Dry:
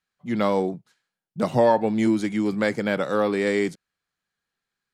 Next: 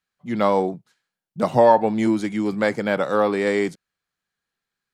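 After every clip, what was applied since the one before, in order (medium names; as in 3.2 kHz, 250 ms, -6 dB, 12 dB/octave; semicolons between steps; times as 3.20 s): dynamic bell 860 Hz, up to +6 dB, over -31 dBFS, Q 0.93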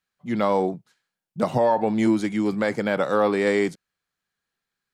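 peak limiter -10.5 dBFS, peak gain reduction 7.5 dB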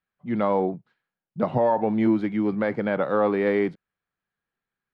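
distance through air 400 m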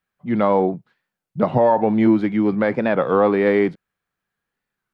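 warped record 33 1/3 rpm, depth 160 cents; trim +5.5 dB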